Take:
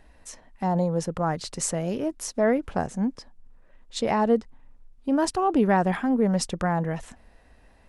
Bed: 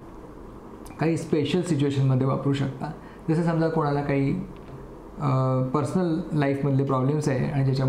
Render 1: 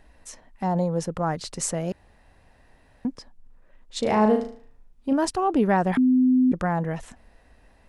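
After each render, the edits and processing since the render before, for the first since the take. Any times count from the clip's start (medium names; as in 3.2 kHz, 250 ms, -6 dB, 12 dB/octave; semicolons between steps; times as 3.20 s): 1.92–3.05 s: room tone; 3.99–5.13 s: flutter echo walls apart 6.4 m, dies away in 0.46 s; 5.97–6.52 s: bleep 255 Hz -15 dBFS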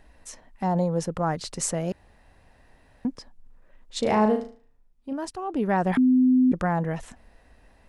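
4.13–5.92 s: dip -9 dB, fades 0.46 s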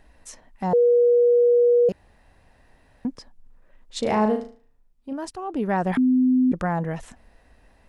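0.73–1.89 s: bleep 481 Hz -13.5 dBFS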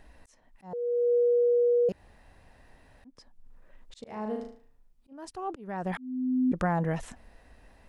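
compression, threshold -22 dBFS, peak gain reduction 6.5 dB; slow attack 533 ms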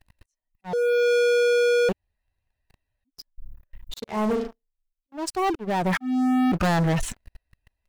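expander on every frequency bin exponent 1.5; waveshaping leveller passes 5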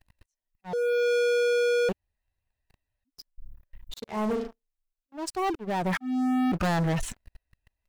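trim -4 dB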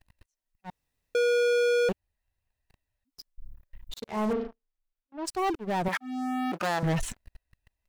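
0.70–1.15 s: room tone; 4.33–5.25 s: distance through air 230 m; 5.88–6.83 s: high-pass 350 Hz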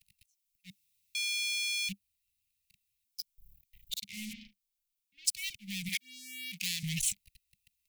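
Chebyshev band-stop 200–2200 Hz, order 5; tilt EQ +3 dB/octave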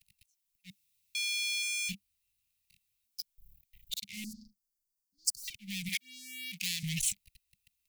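1.60–3.21 s: doubling 23 ms -4.5 dB; 4.24–5.48 s: Chebyshev band-stop 430–4600 Hz, order 5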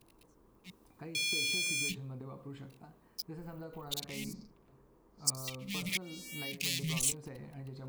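add bed -23 dB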